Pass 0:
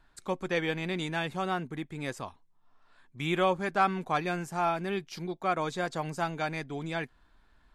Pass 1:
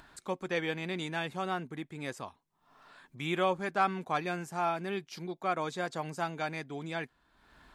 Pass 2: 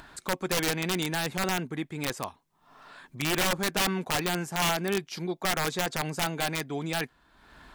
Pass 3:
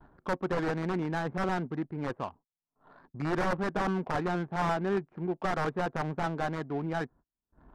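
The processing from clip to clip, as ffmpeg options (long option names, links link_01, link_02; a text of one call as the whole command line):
ffmpeg -i in.wav -af "highpass=frequency=120:poles=1,acompressor=mode=upward:threshold=-43dB:ratio=2.5,volume=-2.5dB" out.wav
ffmpeg -i in.wav -filter_complex "[0:a]asplit=2[link_01][link_02];[link_02]alimiter=level_in=1dB:limit=-24dB:level=0:latency=1:release=11,volume=-1dB,volume=2dB[link_03];[link_01][link_03]amix=inputs=2:normalize=0,aeval=exprs='(mod(9.44*val(0)+1,2)-1)/9.44':channel_layout=same" out.wav
ffmpeg -i in.wav -af "agate=range=-33dB:threshold=-51dB:ratio=16:detection=peak,lowpass=frequency=1700:width=0.5412,lowpass=frequency=1700:width=1.3066,adynamicsmooth=sensitivity=6.5:basefreq=610" out.wav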